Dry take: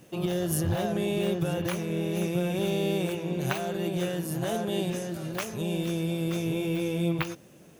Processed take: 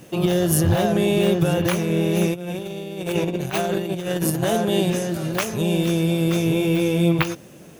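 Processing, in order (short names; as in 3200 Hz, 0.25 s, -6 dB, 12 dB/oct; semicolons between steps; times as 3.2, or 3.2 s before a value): 2.32–4.43 negative-ratio compressor -33 dBFS, ratio -0.5; gain +9 dB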